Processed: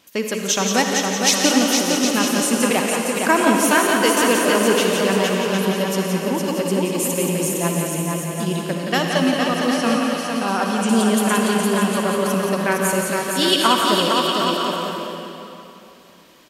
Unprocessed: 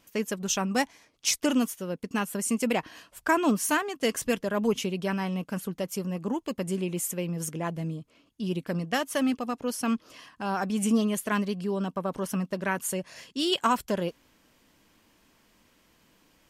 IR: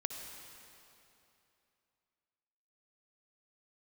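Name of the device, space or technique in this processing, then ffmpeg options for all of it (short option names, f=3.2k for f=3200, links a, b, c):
PA in a hall: -filter_complex "[0:a]highpass=f=180:p=1,equalizer=f=3.8k:t=o:w=0.58:g=5,aecho=1:1:174:0.501[a];[1:a]atrim=start_sample=2205[b];[a][b]afir=irnorm=-1:irlink=0,aecho=1:1:460|759|953.4|1080|1162:0.631|0.398|0.251|0.158|0.1,asettb=1/sr,asplit=3[c][d][e];[c]atrim=end=9.064[f];[d]atrim=start=9.06:end=10.89,asetpts=PTS-STARTPTS,afade=t=in:d=0.004:c=qsin,afade=t=out:st=1.826:d=0.004:c=qsin,acrossover=split=7500[g][h];[h]acompressor=threshold=-50dB:ratio=4:attack=1:release=60[i];[g][i]amix=inputs=2:normalize=0[j];[e]atrim=start=10.886[k];[f][j]acrossfade=d=0.004:c1=hsin:c2=qsin[l];[l][k]acrossfade=d=0.004:c1=qsin:c2=hsin,volume=8dB"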